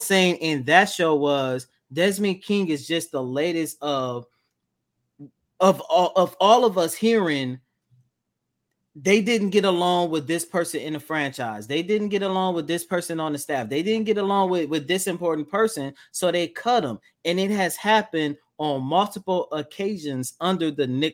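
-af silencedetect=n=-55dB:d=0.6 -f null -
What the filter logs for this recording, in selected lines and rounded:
silence_start: 4.27
silence_end: 5.19 | silence_duration: 0.92
silence_start: 8.01
silence_end: 8.95 | silence_duration: 0.94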